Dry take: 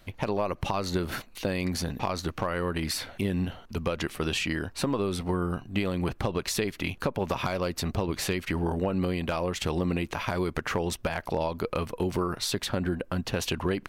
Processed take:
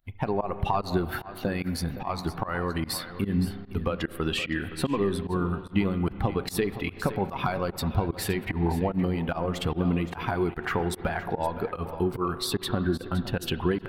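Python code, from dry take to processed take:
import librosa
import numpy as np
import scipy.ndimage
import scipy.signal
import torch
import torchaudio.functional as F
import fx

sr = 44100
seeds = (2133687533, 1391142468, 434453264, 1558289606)

y = fx.bin_expand(x, sr, power=1.5)
y = fx.graphic_eq_15(y, sr, hz=(630, 2500, 6300), db=(-12, -4, -11))
y = y + 10.0 ** (-13.5 / 20.0) * np.pad(y, (int(517 * sr / 1000.0), 0))[:len(y)]
y = fx.rev_spring(y, sr, rt60_s=2.9, pass_ms=(30, 35), chirp_ms=60, drr_db=12.0)
y = fx.volume_shaper(y, sr, bpm=148, per_beat=1, depth_db=-23, release_ms=99.0, shape='fast start')
y = fx.peak_eq(y, sr, hz=710.0, db=11.5, octaves=0.52)
y = y * librosa.db_to_amplitude(6.0)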